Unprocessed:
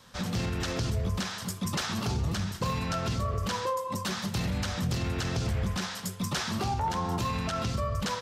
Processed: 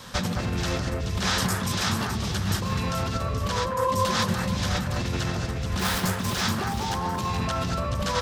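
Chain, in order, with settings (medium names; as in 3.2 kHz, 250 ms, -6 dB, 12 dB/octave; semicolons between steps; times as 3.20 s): 5.79–6.33 s: dead-time distortion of 0.059 ms; compressor with a negative ratio -36 dBFS, ratio -1; echo whose repeats swap between lows and highs 214 ms, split 2 kHz, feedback 64%, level -3.5 dB; trim +7.5 dB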